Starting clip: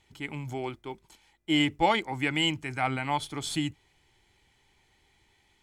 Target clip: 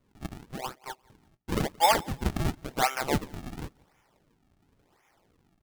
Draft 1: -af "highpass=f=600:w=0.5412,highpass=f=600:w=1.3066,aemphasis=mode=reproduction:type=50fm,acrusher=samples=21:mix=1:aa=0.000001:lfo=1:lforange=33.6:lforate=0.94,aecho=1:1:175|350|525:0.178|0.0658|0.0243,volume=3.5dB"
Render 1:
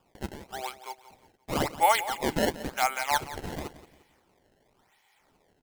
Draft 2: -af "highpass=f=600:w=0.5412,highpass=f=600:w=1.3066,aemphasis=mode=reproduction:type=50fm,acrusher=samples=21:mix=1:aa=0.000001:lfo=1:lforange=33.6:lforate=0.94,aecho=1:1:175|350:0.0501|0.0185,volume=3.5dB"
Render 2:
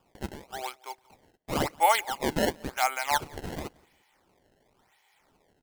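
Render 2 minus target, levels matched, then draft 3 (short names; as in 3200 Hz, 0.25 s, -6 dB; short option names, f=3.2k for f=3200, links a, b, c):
decimation with a swept rate: distortion -6 dB
-af "highpass=f=600:w=0.5412,highpass=f=600:w=1.3066,aemphasis=mode=reproduction:type=50fm,acrusher=samples=50:mix=1:aa=0.000001:lfo=1:lforange=80:lforate=0.94,aecho=1:1:175|350:0.0501|0.0185,volume=3.5dB"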